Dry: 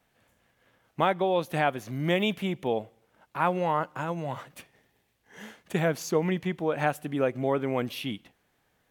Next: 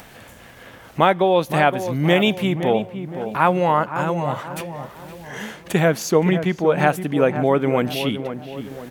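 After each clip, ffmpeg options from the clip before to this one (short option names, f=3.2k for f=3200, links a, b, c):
-filter_complex "[0:a]asplit=2[a][b];[b]acompressor=mode=upward:threshold=-30dB:ratio=2.5,volume=1.5dB[c];[a][c]amix=inputs=2:normalize=0,asplit=2[d][e];[e]adelay=517,lowpass=f=1.3k:p=1,volume=-9dB,asplit=2[f][g];[g]adelay=517,lowpass=f=1.3k:p=1,volume=0.47,asplit=2[h][i];[i]adelay=517,lowpass=f=1.3k:p=1,volume=0.47,asplit=2[j][k];[k]adelay=517,lowpass=f=1.3k:p=1,volume=0.47,asplit=2[l][m];[m]adelay=517,lowpass=f=1.3k:p=1,volume=0.47[n];[d][f][h][j][l][n]amix=inputs=6:normalize=0,volume=2dB"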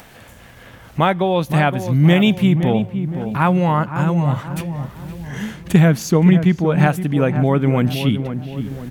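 -af "asubboost=boost=7:cutoff=210"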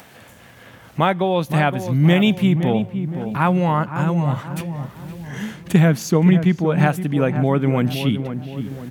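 -af "highpass=98,volume=-1.5dB"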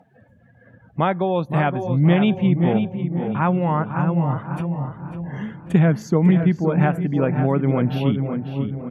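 -filter_complex "[0:a]afftdn=nr=24:nf=-39,highshelf=f=3k:g=-11.5,asplit=2[a][b];[b]adelay=546,lowpass=f=3.6k:p=1,volume=-8.5dB,asplit=2[c][d];[d]adelay=546,lowpass=f=3.6k:p=1,volume=0.38,asplit=2[e][f];[f]adelay=546,lowpass=f=3.6k:p=1,volume=0.38,asplit=2[g][h];[h]adelay=546,lowpass=f=3.6k:p=1,volume=0.38[i];[a][c][e][g][i]amix=inputs=5:normalize=0,volume=-1.5dB"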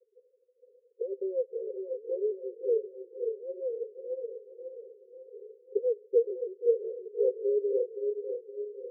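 -af "asuperpass=centerf=450:order=12:qfactor=3.4"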